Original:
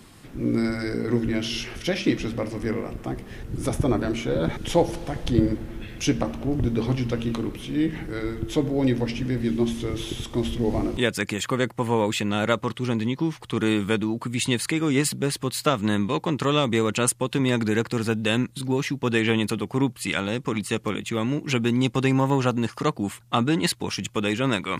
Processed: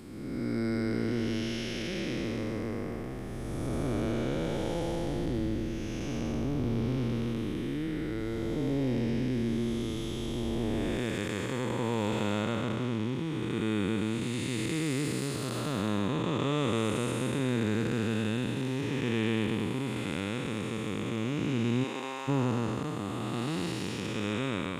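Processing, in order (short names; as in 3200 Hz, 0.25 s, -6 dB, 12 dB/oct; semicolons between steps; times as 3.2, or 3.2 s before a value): time blur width 0.552 s; 21.83–22.27 HPF 380 Hz -> 950 Hz 12 dB/oct; gain -3 dB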